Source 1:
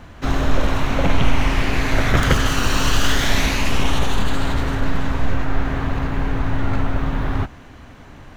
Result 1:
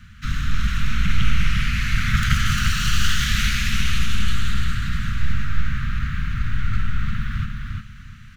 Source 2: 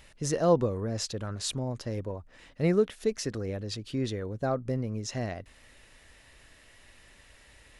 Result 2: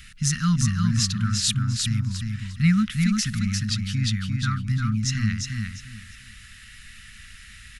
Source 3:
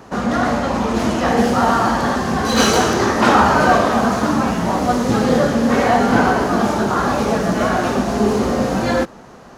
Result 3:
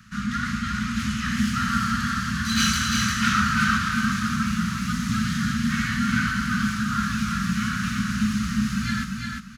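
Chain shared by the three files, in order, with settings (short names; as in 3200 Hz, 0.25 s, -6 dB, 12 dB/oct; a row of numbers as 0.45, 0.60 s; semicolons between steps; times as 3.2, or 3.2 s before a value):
Chebyshev band-stop 220–1300 Hz, order 4; on a send: feedback echo 0.35 s, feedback 24%, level -4 dB; on the sum: match loudness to -24 LUFS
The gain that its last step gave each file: -2.5, +10.5, -4.0 dB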